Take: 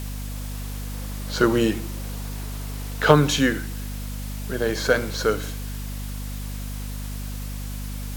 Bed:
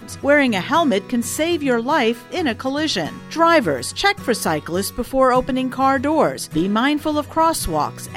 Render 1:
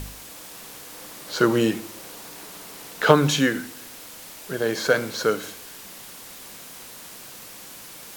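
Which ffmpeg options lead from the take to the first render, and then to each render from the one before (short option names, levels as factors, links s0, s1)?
-af "bandreject=f=50:t=h:w=4,bandreject=f=100:t=h:w=4,bandreject=f=150:t=h:w=4,bandreject=f=200:t=h:w=4,bandreject=f=250:t=h:w=4"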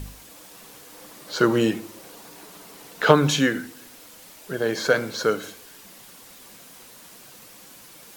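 -af "afftdn=nr=6:nf=-42"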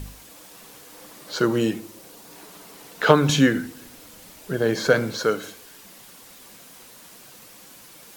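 -filter_complex "[0:a]asettb=1/sr,asplit=3[s0][s1][s2];[s0]atrim=end=1.394[s3];[s1]atrim=start=1.39:end=2.3,asetpts=PTS-STARTPTS,afade=t=in:d=0.004:c=qsin,afade=t=out:st=0.906:d=0.004:c=qsin,equalizer=f=1300:w=0.36:g=-4[s4];[s2]atrim=start=2.296[s5];[s3][s4]acrossfade=d=0.004:c1=hsin:c2=qsin[s6];[s6][s5]acrossfade=d=0.004:c1=qsin:c2=hsin,asettb=1/sr,asplit=3[s7][s8][s9];[s7]atrim=end=3.294[s10];[s8]atrim=start=3.29:end=5.18,asetpts=PTS-STARTPTS,afade=t=in:d=0.004:c=qsin,afade=t=out:st=1.886:d=0.004:c=qsin,lowshelf=f=260:g=9[s11];[s9]atrim=start=5.176[s12];[s10][s11]acrossfade=d=0.004:c1=hsin:c2=qsin[s13];[s13][s12]acrossfade=d=0.004:c1=qsin:c2=hsin"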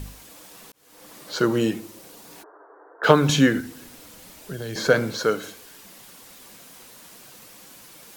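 -filter_complex "[0:a]asplit=3[s0][s1][s2];[s0]afade=t=out:st=2.42:d=0.02[s3];[s1]asuperpass=centerf=730:order=20:qfactor=0.54,afade=t=in:st=2.42:d=0.02,afade=t=out:st=3.03:d=0.02[s4];[s2]afade=t=in:st=3.03:d=0.02[s5];[s3][s4][s5]amix=inputs=3:normalize=0,asettb=1/sr,asplit=3[s6][s7][s8];[s6]atrim=end=3.604[s9];[s7]atrim=start=3.6:end=4.76,asetpts=PTS-STARTPTS,afade=t=in:d=0.004:c=qsin,afade=t=out:st=1.156:d=0.004:c=qsin,acrossover=split=130|3000[s10][s11][s12];[s11]acompressor=threshold=0.0251:ratio=6:attack=3.2:release=140:knee=2.83:detection=peak[s13];[s10][s13][s12]amix=inputs=3:normalize=0[s14];[s8]atrim=start=4.756[s15];[s9][s14]acrossfade=d=0.004:c1=hsin:c2=qsin[s16];[s16][s15]acrossfade=d=0.004:c1=qsin:c2=hsin,asplit=2[s17][s18];[s17]atrim=end=0.72,asetpts=PTS-STARTPTS,afade=t=out:st=0.716:d=0.004:c=hsin[s19];[s18]atrim=start=0.72,asetpts=PTS-STARTPTS,afade=t=in:d=0.43[s20];[s19][s20]concat=n=2:v=0:a=1"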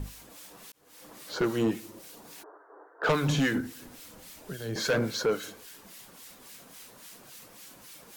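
-filter_complex "[0:a]acrossover=split=1500[s0][s1];[s0]aeval=exprs='val(0)*(1-0.7/2+0.7/2*cos(2*PI*3.6*n/s))':c=same[s2];[s1]aeval=exprs='val(0)*(1-0.7/2-0.7/2*cos(2*PI*3.6*n/s))':c=same[s3];[s2][s3]amix=inputs=2:normalize=0,asoftclip=type=tanh:threshold=0.106"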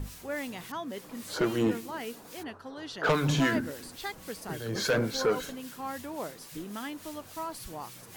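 -filter_complex "[1:a]volume=0.0891[s0];[0:a][s0]amix=inputs=2:normalize=0"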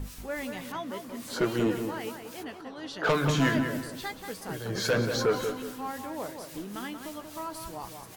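-filter_complex "[0:a]asplit=2[s0][s1];[s1]adelay=16,volume=0.266[s2];[s0][s2]amix=inputs=2:normalize=0,asplit=2[s3][s4];[s4]adelay=184,lowpass=f=2800:p=1,volume=0.473,asplit=2[s5][s6];[s6]adelay=184,lowpass=f=2800:p=1,volume=0.37,asplit=2[s7][s8];[s8]adelay=184,lowpass=f=2800:p=1,volume=0.37,asplit=2[s9][s10];[s10]adelay=184,lowpass=f=2800:p=1,volume=0.37[s11];[s3][s5][s7][s9][s11]amix=inputs=5:normalize=0"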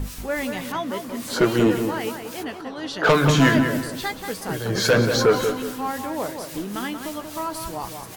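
-af "volume=2.66"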